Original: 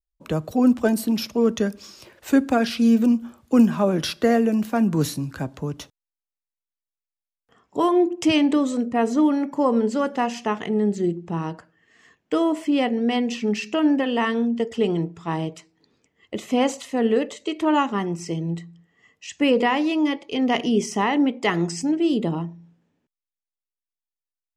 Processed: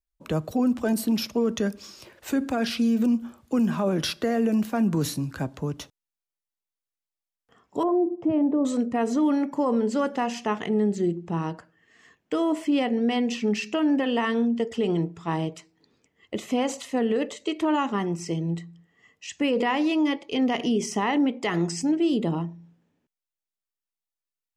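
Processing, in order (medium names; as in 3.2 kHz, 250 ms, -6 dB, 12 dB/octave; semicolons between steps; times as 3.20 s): 7.83–8.65 s: Chebyshev band-pass 110–730 Hz, order 2; peak limiter -15 dBFS, peak gain reduction 9.5 dB; trim -1 dB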